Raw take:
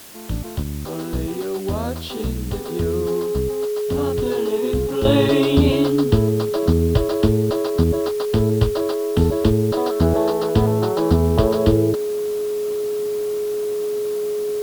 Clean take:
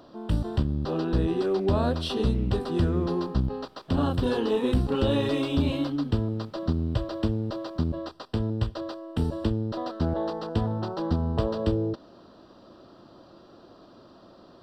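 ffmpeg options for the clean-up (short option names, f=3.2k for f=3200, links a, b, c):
-af "bandreject=f=420:w=30,afwtdn=0.0089,asetnsamples=n=441:p=0,asendcmd='5.05 volume volume -9dB',volume=0dB"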